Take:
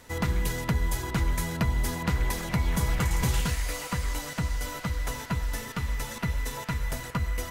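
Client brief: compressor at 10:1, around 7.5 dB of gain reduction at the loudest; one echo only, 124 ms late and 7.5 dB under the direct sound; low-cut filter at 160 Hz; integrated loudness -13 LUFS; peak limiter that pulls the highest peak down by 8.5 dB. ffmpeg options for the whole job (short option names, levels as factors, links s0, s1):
-af "highpass=160,acompressor=threshold=0.0251:ratio=10,alimiter=level_in=1.58:limit=0.0631:level=0:latency=1,volume=0.631,aecho=1:1:124:0.422,volume=16.8"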